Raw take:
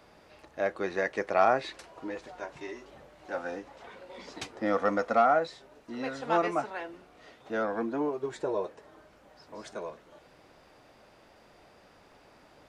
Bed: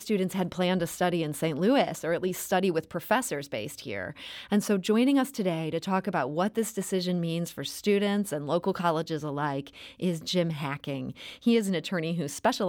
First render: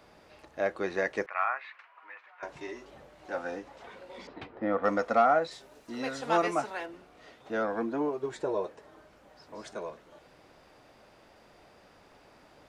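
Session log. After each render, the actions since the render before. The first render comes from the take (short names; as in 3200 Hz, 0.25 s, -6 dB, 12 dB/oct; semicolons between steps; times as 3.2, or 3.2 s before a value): 1.26–2.43 Chebyshev band-pass 1100–2400 Hz; 4.27–4.84 air absorption 440 m; 5.51–6.86 high shelf 4900 Hz +10.5 dB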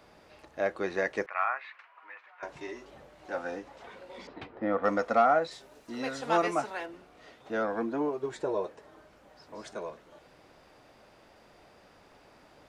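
nothing audible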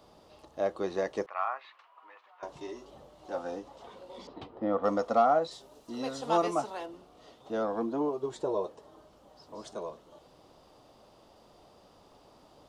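band shelf 1900 Hz -10.5 dB 1 oct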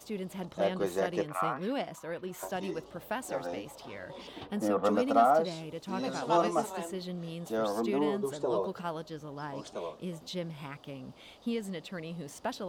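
add bed -10.5 dB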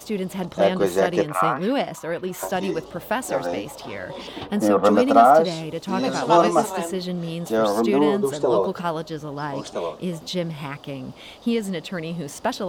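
gain +11 dB; limiter -3 dBFS, peak gain reduction 2 dB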